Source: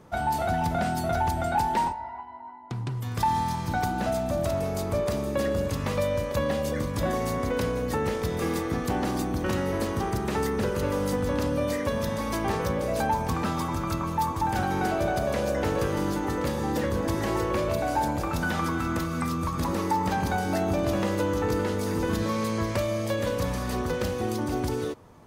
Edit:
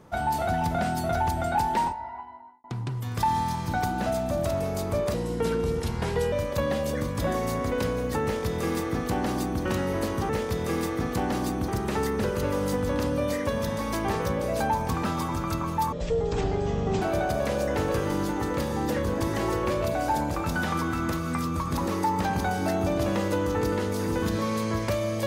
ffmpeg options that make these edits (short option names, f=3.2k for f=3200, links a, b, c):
-filter_complex "[0:a]asplit=8[a][b][c][d][e][f][g][h];[a]atrim=end=2.64,asetpts=PTS-STARTPTS,afade=t=out:st=2.26:d=0.38[i];[b]atrim=start=2.64:end=5.144,asetpts=PTS-STARTPTS,afade=t=in:d=0.004:c=hsin[j];[c]atrim=start=5.14:end=6.11,asetpts=PTS-STARTPTS,asetrate=36162,aresample=44100,atrim=end_sample=52167,asetpts=PTS-STARTPTS[k];[d]atrim=start=6.106:end=10.082[l];[e]atrim=start=8.018:end=9.412[m];[f]atrim=start=10.078:end=14.324[n];[g]atrim=start=14.32:end=14.89,asetpts=PTS-STARTPTS,asetrate=22932,aresample=44100,atrim=end_sample=48340,asetpts=PTS-STARTPTS[o];[h]atrim=start=14.886[p];[i][j]concat=n=2:v=0:a=1[q];[q][k]acrossfade=d=0.004:c1=hsin:c2=hsin[r];[r][l]acrossfade=d=0.004:c1=hsin:c2=hsin[s];[s][m]acrossfade=d=0.004:c1=hsin:c2=hsin[t];[t][n]acrossfade=d=0.004:c1=hsin:c2=hsin[u];[u][o]acrossfade=d=0.004:c1=hsin:c2=hsin[v];[v][p]acrossfade=d=0.004:c1=hsin:c2=hsin"